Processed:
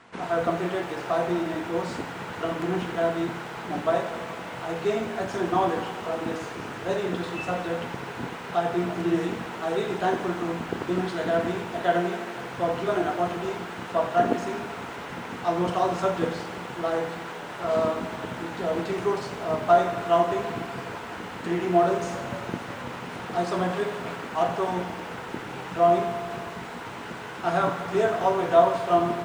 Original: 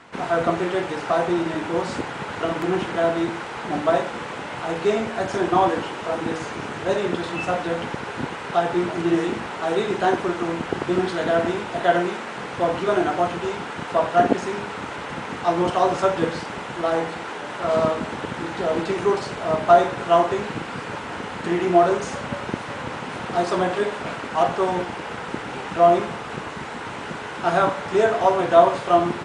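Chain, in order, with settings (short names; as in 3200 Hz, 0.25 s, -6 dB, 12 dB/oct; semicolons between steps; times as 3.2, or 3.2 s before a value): on a send at -15.5 dB: reverb, pre-delay 3 ms; on the sum: lo-fi delay 83 ms, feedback 80%, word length 7-bit, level -13 dB; gain -5.5 dB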